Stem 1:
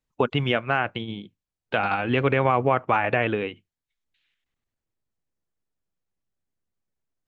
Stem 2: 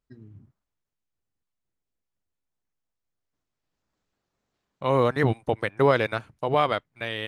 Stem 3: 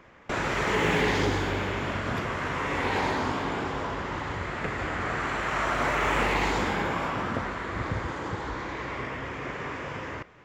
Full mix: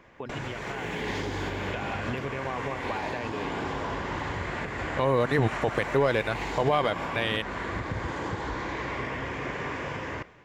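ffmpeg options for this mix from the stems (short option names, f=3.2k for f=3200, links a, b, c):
-filter_complex "[0:a]volume=-12dB[a];[1:a]asoftclip=type=tanh:threshold=-9dB,adelay=150,volume=2dB[b];[2:a]acompressor=threshold=-30dB:ratio=3,volume=-1.5dB[c];[a][c]amix=inputs=2:normalize=0,alimiter=level_in=1dB:limit=-24dB:level=0:latency=1:release=208,volume=-1dB,volume=0dB[d];[b][d]amix=inputs=2:normalize=0,bandreject=f=1.3k:w=10,dynaudnorm=f=540:g=3:m=4dB,alimiter=limit=-14dB:level=0:latency=1:release=91"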